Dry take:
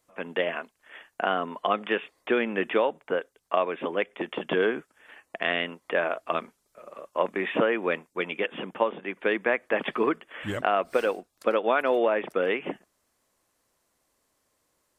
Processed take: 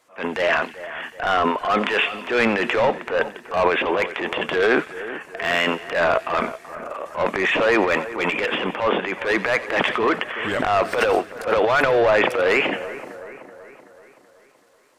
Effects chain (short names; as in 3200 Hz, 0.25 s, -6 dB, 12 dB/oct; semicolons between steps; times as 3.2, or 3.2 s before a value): overdrive pedal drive 22 dB, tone 2700 Hz, clips at -8.5 dBFS; transient shaper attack -9 dB, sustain +10 dB; split-band echo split 2000 Hz, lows 0.379 s, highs 90 ms, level -14 dB